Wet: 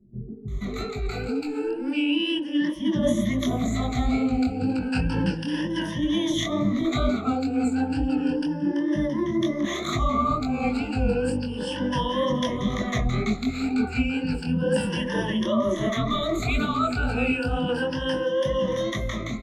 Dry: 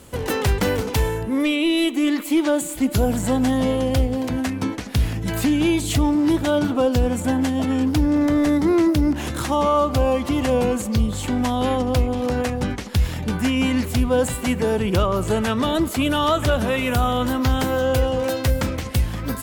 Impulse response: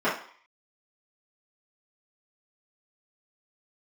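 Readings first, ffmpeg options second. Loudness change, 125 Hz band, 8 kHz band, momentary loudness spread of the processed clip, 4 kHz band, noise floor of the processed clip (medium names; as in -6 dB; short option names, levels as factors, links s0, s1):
-4.5 dB, -6.5 dB, -10.0 dB, 5 LU, -3.0 dB, -33 dBFS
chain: -filter_complex "[0:a]afftfilt=real='re*pow(10,22/40*sin(2*PI*(1.2*log(max(b,1)*sr/1024/100)/log(2)-(0.32)*(pts-256)/sr)))':imag='im*pow(10,22/40*sin(2*PI*(1.2*log(max(b,1)*sr/1024/100)/log(2)-(0.32)*(pts-256)/sr)))':win_size=1024:overlap=0.75,flanger=delay=19:depth=6:speed=2.1,areverse,acompressor=threshold=0.0891:ratio=10,areverse,lowpass=4900,adynamicequalizer=threshold=0.0112:dfrequency=210:dqfactor=1.4:tfrequency=210:tqfactor=1.4:attack=5:release=100:ratio=0.375:range=2:mode=boostabove:tftype=bell,dynaudnorm=f=220:g=13:m=1.88,equalizer=f=86:t=o:w=0.39:g=-10,acrossover=split=280|890[s0][s1][s2];[s2]adelay=480[s3];[s1]adelay=520[s4];[s0][s4][s3]amix=inputs=3:normalize=0,volume=0.631"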